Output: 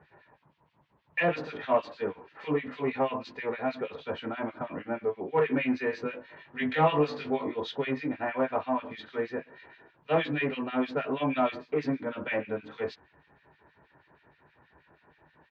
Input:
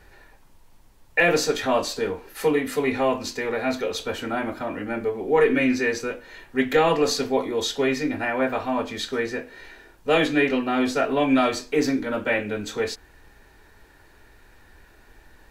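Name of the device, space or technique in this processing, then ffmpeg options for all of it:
guitar amplifier with harmonic tremolo: -filter_complex "[0:a]acrossover=split=1700[link_01][link_02];[link_01]aeval=exprs='val(0)*(1-1/2+1/2*cos(2*PI*6.3*n/s))':channel_layout=same[link_03];[link_02]aeval=exprs='val(0)*(1-1/2-1/2*cos(2*PI*6.3*n/s))':channel_layout=same[link_04];[link_03][link_04]amix=inputs=2:normalize=0,asoftclip=type=tanh:threshold=-15.5dB,highpass=61,highpass=92,equalizer=frequency=150:width_type=q:width=4:gain=10,equalizer=frequency=610:width_type=q:width=4:gain=4,equalizer=frequency=1000:width_type=q:width=4:gain=6,lowpass=frequency=3400:width=0.5412,lowpass=frequency=3400:width=1.3066,asplit=3[link_05][link_06][link_07];[link_05]afade=type=out:start_time=5.92:duration=0.02[link_08];[link_06]asplit=2[link_09][link_10];[link_10]adelay=20,volume=-2.5dB[link_11];[link_09][link_11]amix=inputs=2:normalize=0,afade=type=in:start_time=5.92:duration=0.02,afade=type=out:start_time=7.54:duration=0.02[link_12];[link_07]afade=type=in:start_time=7.54:duration=0.02[link_13];[link_08][link_12][link_13]amix=inputs=3:normalize=0,volume=-3dB"

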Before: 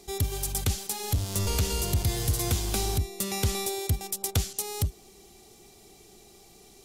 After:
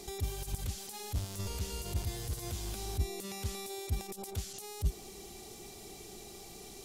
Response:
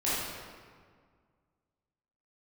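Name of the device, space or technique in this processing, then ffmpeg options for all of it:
de-esser from a sidechain: -filter_complex "[0:a]asplit=2[link_01][link_02];[link_02]highpass=5500,apad=whole_len=301695[link_03];[link_01][link_03]sidechaincompress=threshold=-50dB:ratio=8:attack=2.8:release=27,volume=4.5dB"

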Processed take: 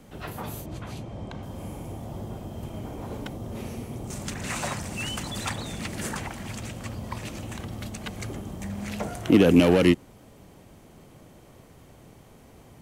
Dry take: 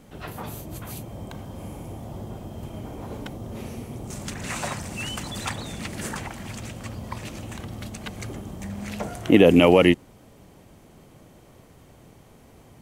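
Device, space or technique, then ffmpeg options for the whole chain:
one-band saturation: -filter_complex "[0:a]asettb=1/sr,asplit=3[link_01][link_02][link_03];[link_01]atrim=end=0.664[link_04];[link_02]atrim=start=0.66:end=1.43,asetpts=PTS-STARTPTS,afade=type=in:duration=0.004:curve=qsin,afade=type=out:start_time=0.766:duration=0.004:curve=qsin,lowpass=5300[link_05];[link_03]atrim=start=1.426[link_06];[link_04][link_05]acrossfade=duration=0.004:curve1=hsin:curve2=qsin[link_07];[link_07][link_06]acrossfade=duration=0.004:curve1=qsin:curve2=hsin,acrossover=split=330|3900[link_08][link_09][link_10];[link_09]asoftclip=type=tanh:threshold=-20.5dB[link_11];[link_08][link_11][link_10]amix=inputs=3:normalize=0"

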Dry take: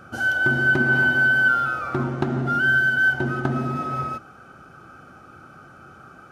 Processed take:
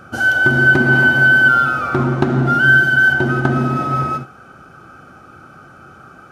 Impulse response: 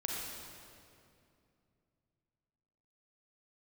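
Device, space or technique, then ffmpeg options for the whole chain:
keyed gated reverb: -filter_complex "[0:a]asplit=3[link_01][link_02][link_03];[1:a]atrim=start_sample=2205[link_04];[link_02][link_04]afir=irnorm=-1:irlink=0[link_05];[link_03]apad=whole_len=278479[link_06];[link_05][link_06]sidechaingate=range=-33dB:threshold=-37dB:ratio=16:detection=peak,volume=-7.5dB[link_07];[link_01][link_07]amix=inputs=2:normalize=0,volume=4.5dB"

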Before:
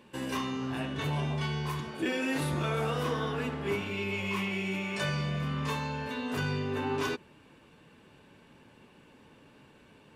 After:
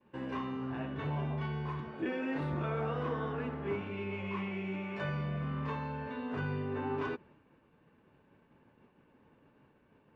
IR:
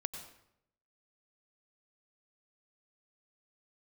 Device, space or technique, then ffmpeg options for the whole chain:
hearing-loss simulation: -af "lowpass=1800,agate=range=-33dB:threshold=-53dB:ratio=3:detection=peak,volume=-3.5dB"

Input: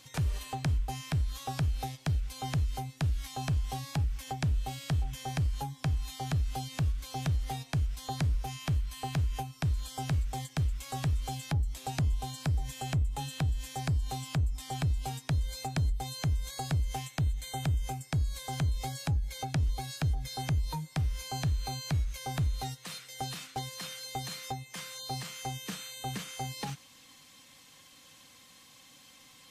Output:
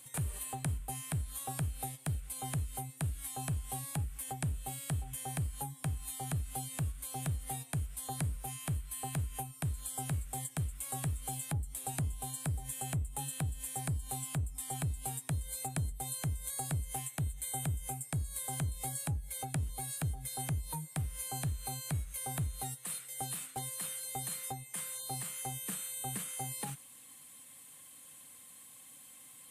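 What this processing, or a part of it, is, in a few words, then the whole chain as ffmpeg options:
budget condenser microphone: -af "highpass=71,highshelf=frequency=7200:width_type=q:width=3:gain=10,volume=-4.5dB"

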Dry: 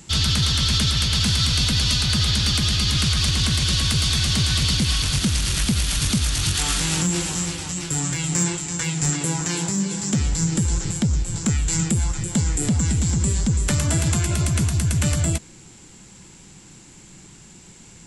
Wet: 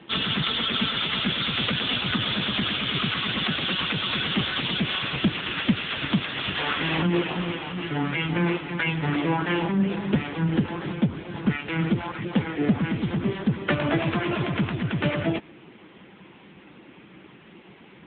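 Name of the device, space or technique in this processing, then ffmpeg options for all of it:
telephone: -filter_complex "[0:a]asettb=1/sr,asplit=3[link_01][link_02][link_03];[link_01]atrim=end=12.774[link_04];[link_02]atrim=start=12.77:end=13.68,asetpts=PTS-STARTPTS,afade=type=in:duration=0.004:curve=qsin,afade=type=out:start_time=0.906:duration=0.004:curve=qsin,highpass=65[link_05];[link_03]atrim=start=13.676[link_06];[link_04][link_05]acrossfade=duration=0.004:curve1=hsin:curve2=qsin[link_07];[link_07][link_06]acrossfade=duration=0.004:curve1=qsin:curve2=hsin,highpass=280,lowpass=3000,volume=8dB" -ar 8000 -c:a libopencore_amrnb -b:a 6700

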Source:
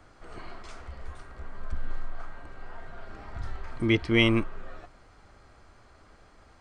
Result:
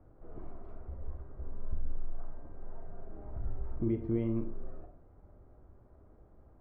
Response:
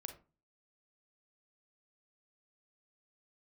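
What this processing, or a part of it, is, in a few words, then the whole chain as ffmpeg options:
television next door: -filter_complex "[0:a]acompressor=threshold=-26dB:ratio=5,lowpass=540[link_01];[1:a]atrim=start_sample=2205[link_02];[link_01][link_02]afir=irnorm=-1:irlink=0,volume=2.5dB"

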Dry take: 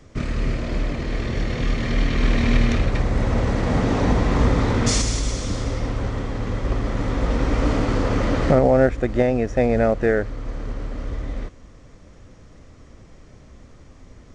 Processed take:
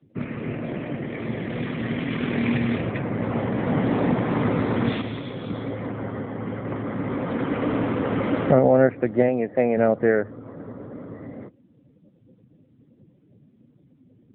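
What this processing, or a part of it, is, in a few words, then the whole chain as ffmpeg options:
mobile call with aggressive noise cancelling: -filter_complex "[0:a]asettb=1/sr,asplit=3[link_01][link_02][link_03];[link_01]atrim=end=9.284[link_04];[link_02]atrim=start=9.28:end=9.77,asetpts=PTS-STARTPTS,afade=type=in:duration=0.004:curve=qsin,afade=type=out:start_time=0.486:duration=0.004:curve=qsin,highpass=frequency=220:poles=1[link_05];[link_03]atrim=start=9.766[link_06];[link_04][link_05]acrossfade=duration=0.004:curve1=hsin:curve2=qsin[link_07];[link_07][link_06]acrossfade=duration=0.004:curve1=qsin:curve2=hsin,highpass=frequency=120:width=0.5412,highpass=frequency=120:width=1.3066,afftdn=noise_reduction=21:noise_floor=-41" -ar 8000 -c:a libopencore_amrnb -b:a 7950

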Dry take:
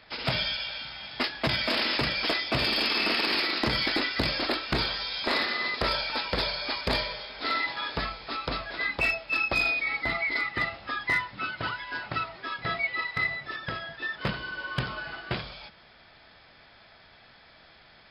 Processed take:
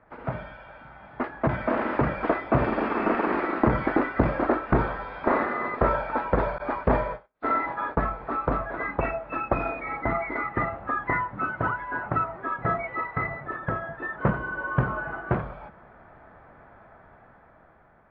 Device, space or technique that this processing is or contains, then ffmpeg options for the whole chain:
action camera in a waterproof case: -filter_complex "[0:a]asettb=1/sr,asplit=3[link_01][link_02][link_03];[link_01]atrim=end=6.584[link_04];[link_02]atrim=start=6.58:end=8.08,asetpts=PTS-STARTPTS,afade=type=in:duration=0.004:curve=qsin,afade=type=out:start_time=1.496:duration=0.004:curve=qsin,agate=range=-44dB:threshold=-35dB:ratio=16:detection=peak[link_05];[link_03]atrim=start=8.076[link_06];[link_04][link_05]acrossfade=duration=0.004:curve1=hsin:curve2=qsin[link_07];[link_07][link_06]acrossfade=duration=0.004:curve1=qsin:curve2=hsin,lowpass=frequency=1400:width=0.5412,lowpass=frequency=1400:width=1.3066,dynaudnorm=framelen=570:gausssize=5:maxgain=8dB" -ar 16000 -c:a aac -b:a 48k

